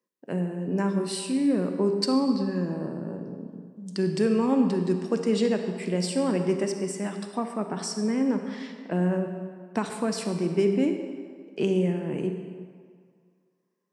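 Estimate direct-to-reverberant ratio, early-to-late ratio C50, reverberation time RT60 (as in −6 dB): 5.5 dB, 6.0 dB, 2.0 s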